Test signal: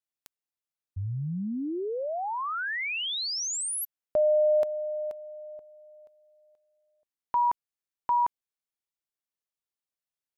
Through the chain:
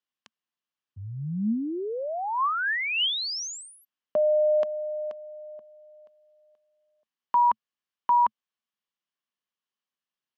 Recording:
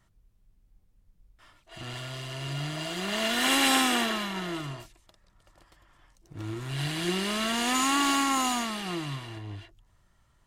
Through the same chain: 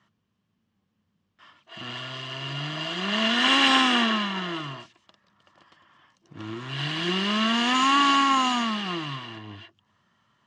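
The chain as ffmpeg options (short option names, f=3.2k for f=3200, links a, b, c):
-af "highpass=f=110:w=0.5412,highpass=f=110:w=1.3066,equalizer=f=120:t=q:w=4:g=-3,equalizer=f=220:t=q:w=4:g=8,equalizer=f=1.1k:t=q:w=4:g=8,equalizer=f=1.7k:t=q:w=4:g=5,equalizer=f=3k:t=q:w=4:g=8,lowpass=f=6.2k:w=0.5412,lowpass=f=6.2k:w=1.3066"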